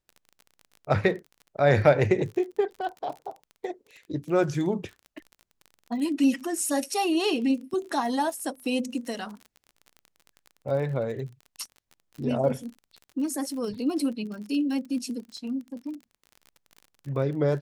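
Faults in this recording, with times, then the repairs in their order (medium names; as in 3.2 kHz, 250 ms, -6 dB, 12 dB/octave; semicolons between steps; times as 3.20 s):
crackle 32 per s -36 dBFS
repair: de-click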